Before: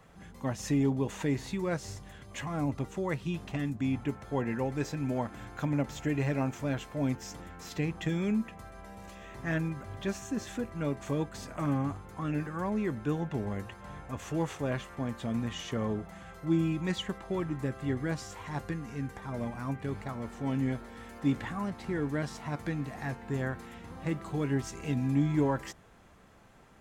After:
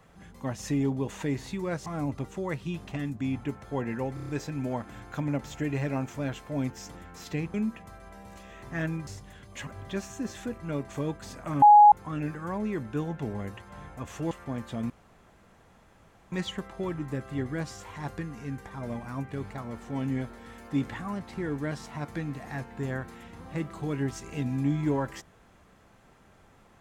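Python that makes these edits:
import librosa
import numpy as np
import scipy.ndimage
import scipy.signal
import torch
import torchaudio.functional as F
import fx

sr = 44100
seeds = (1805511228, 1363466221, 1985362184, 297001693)

y = fx.edit(x, sr, fx.move(start_s=1.86, length_s=0.6, to_s=9.79),
    fx.stutter(start_s=4.74, slice_s=0.03, count=6),
    fx.cut(start_s=7.99, length_s=0.27),
    fx.bleep(start_s=11.74, length_s=0.3, hz=833.0, db=-10.5),
    fx.cut(start_s=14.43, length_s=0.39),
    fx.room_tone_fill(start_s=15.41, length_s=1.42), tone=tone)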